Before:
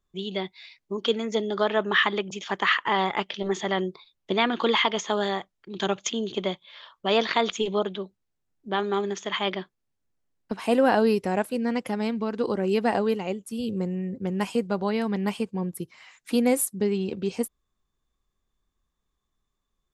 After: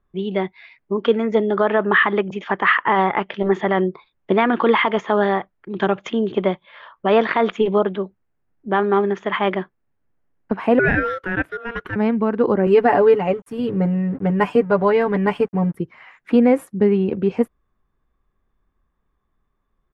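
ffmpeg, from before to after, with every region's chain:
-filter_complex "[0:a]asettb=1/sr,asplit=3[s0][s1][s2];[s0]atrim=end=10.794[s3];[s1]atrim=start=10.79:end=11.96,asetpts=PTS-STARTPTS,afade=t=in:d=0.004:c=qsin,afade=t=out:st=1.166:d=0.004:c=qsin,highpass=f=520:w=0.5412,highpass=f=520:w=1.3066,aeval=exprs='val(0)*sin(2*PI*930*n/s)':c=same[s4];[s2]atrim=start=11.956[s5];[s3][s4]acrossfade=d=0.004:c1=hsin:c2=qsin[s6];[s6][s5]acrossfade=d=0.004:c1=qsin:c2=hsin,asettb=1/sr,asplit=3[s7][s8][s9];[s7]atrim=end=12.664[s10];[s8]atrim=start=12.66:end=15.75,asetpts=PTS-STARTPTS,afade=t=in:d=0.004:c=qsin,afade=t=out:st=3.086:d=0.004:c=qsin,highshelf=f=7200:g=10.5,aecho=1:1:6.9:0.81,atrim=end_sample=136269,aeval=exprs='sgn(val(0))*max(abs(val(0))-0.00299,0)':c=same[s11];[s9]atrim=start=15.746[s12];[s10][s11]acrossfade=d=0.004:c1=hsin:c2=qsin[s13];[s13][s12]acrossfade=d=0.004:c1=qsin:c2=hsin,firequalizer=gain_entry='entry(1700,0);entry(4000,-19);entry(7900,-28)':delay=0.05:min_phase=1,alimiter=level_in=4.73:limit=0.891:release=50:level=0:latency=1,volume=0.596"

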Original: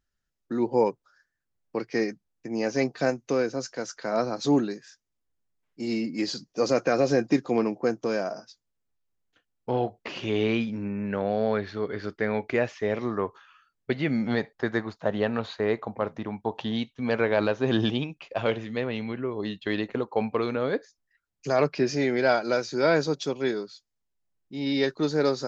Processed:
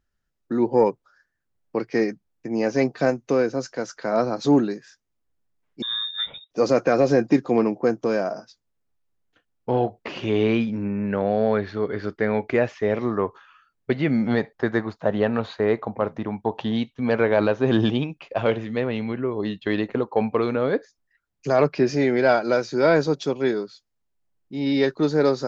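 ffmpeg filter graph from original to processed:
-filter_complex "[0:a]asettb=1/sr,asplit=3[s0][s1][s2];[s0]atrim=end=5.824[s3];[s1]atrim=start=5.82:end=6.51,asetpts=PTS-STARTPTS,afade=t=in:d=0.004:c=qsin,afade=t=out:st=0.686:d=0.004:c=qsin,highshelf=f=2200:g=-6,lowpass=f=3300:t=q:w=0.5098,lowpass=f=3300:t=q:w=0.6013,lowpass=f=3300:t=q:w=0.9,lowpass=f=3300:t=q:w=2.563,afreqshift=-3900[s4];[s2]atrim=start=6.506[s5];[s3][s4]acrossfade=d=0.004:c1=hsin:c2=qsin[s6];[s6][s5]acrossfade=d=0.004:c1=qsin:c2=hsin,highshelf=f=2700:g=-7.5,acontrast=54,volume=0.891"

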